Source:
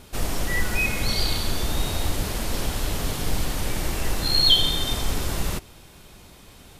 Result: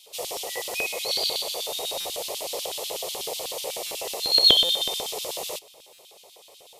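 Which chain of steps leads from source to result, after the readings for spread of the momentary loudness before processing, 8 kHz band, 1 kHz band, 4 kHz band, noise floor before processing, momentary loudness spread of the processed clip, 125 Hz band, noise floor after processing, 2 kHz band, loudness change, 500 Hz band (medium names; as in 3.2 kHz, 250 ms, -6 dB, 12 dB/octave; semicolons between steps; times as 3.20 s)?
11 LU, +0.5 dB, -2.5 dB, +1.5 dB, -48 dBFS, 14 LU, under -20 dB, -52 dBFS, -6.5 dB, 0.0 dB, +2.0 dB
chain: static phaser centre 640 Hz, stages 4; LFO high-pass square 8.1 Hz 470–3200 Hz; buffer glitch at 2.00/3.86/4.64/5.93 s, samples 256, times 8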